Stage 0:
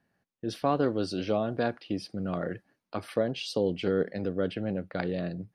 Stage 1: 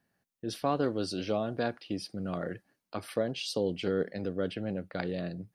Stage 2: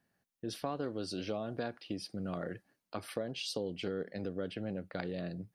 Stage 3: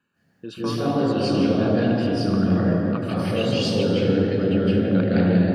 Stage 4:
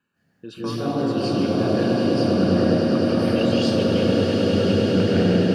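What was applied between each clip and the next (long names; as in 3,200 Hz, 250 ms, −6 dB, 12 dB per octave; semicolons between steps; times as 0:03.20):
high-shelf EQ 5,200 Hz +9 dB; level −3 dB
downward compressor 3 to 1, threshold −33 dBFS, peak gain reduction 8 dB; level −1.5 dB
convolution reverb RT60 3.5 s, pre-delay 137 ms, DRR −7 dB
echo that builds up and dies away 102 ms, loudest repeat 8, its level −9.5 dB; level −2 dB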